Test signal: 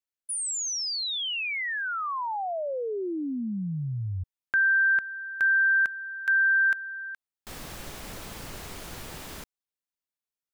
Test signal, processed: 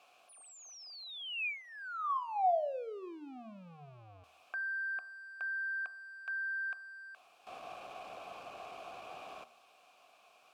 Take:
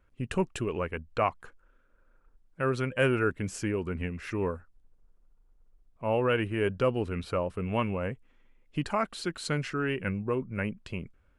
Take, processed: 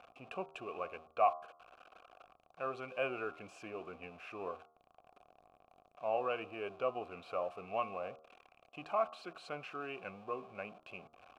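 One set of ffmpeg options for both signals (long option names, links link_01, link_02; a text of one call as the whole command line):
ffmpeg -i in.wav -filter_complex "[0:a]aeval=exprs='val(0)+0.5*0.0126*sgn(val(0))':channel_layout=same,asplit=3[link_01][link_02][link_03];[link_01]bandpass=frequency=730:width_type=q:width=8,volume=0dB[link_04];[link_02]bandpass=frequency=1090:width_type=q:width=8,volume=-6dB[link_05];[link_03]bandpass=frequency=2440:width_type=q:width=8,volume=-9dB[link_06];[link_04][link_05][link_06]amix=inputs=3:normalize=0,bandreject=frequency=78.27:width_type=h:width=4,bandreject=frequency=156.54:width_type=h:width=4,bandreject=frequency=234.81:width_type=h:width=4,bandreject=frequency=313.08:width_type=h:width=4,bandreject=frequency=391.35:width_type=h:width=4,bandreject=frequency=469.62:width_type=h:width=4,bandreject=frequency=547.89:width_type=h:width=4,bandreject=frequency=626.16:width_type=h:width=4,bandreject=frequency=704.43:width_type=h:width=4,bandreject=frequency=782.7:width_type=h:width=4,bandreject=frequency=860.97:width_type=h:width=4,bandreject=frequency=939.24:width_type=h:width=4,bandreject=frequency=1017.51:width_type=h:width=4,bandreject=frequency=1095.78:width_type=h:width=4,bandreject=frequency=1174.05:width_type=h:width=4,bandreject=frequency=1252.32:width_type=h:width=4,bandreject=frequency=1330.59:width_type=h:width=4,bandreject=frequency=1408.86:width_type=h:width=4,volume=3dB" out.wav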